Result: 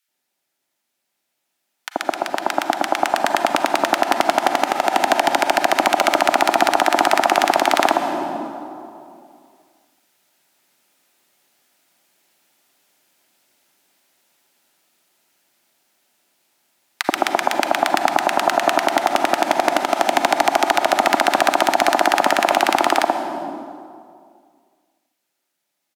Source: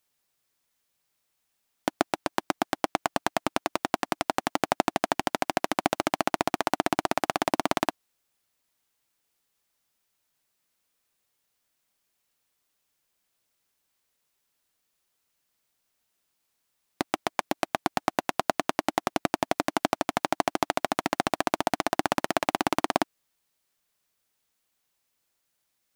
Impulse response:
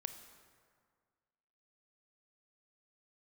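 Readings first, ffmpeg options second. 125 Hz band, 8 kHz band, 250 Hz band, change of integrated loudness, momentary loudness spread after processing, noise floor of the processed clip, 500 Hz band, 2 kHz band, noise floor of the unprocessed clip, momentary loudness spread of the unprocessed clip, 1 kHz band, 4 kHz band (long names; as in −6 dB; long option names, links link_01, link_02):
−1.5 dB, +9.5 dB, +5.5 dB, +10.5 dB, 9 LU, −76 dBFS, +11.0 dB, +12.0 dB, −77 dBFS, 4 LU, +12.0 dB, +11.0 dB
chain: -filter_complex "[0:a]highshelf=frequency=2400:gain=-8,bandreject=frequency=1100:width=8.8[link_01];[1:a]atrim=start_sample=2205,asetrate=31752,aresample=44100[link_02];[link_01][link_02]afir=irnorm=-1:irlink=0,acrossover=split=520|920[link_03][link_04][link_05];[link_03]acompressor=threshold=-39dB:ratio=6[link_06];[link_06][link_04][link_05]amix=inputs=3:normalize=0,highpass=250,equalizer=frequency=470:width=7.9:gain=-13.5,dynaudnorm=framelen=180:gausssize=31:maxgain=13dB,acrossover=split=1300[link_07][link_08];[link_07]adelay=80[link_09];[link_09][link_08]amix=inputs=2:normalize=0,alimiter=level_in=10dB:limit=-1dB:release=50:level=0:latency=1,volume=-1dB"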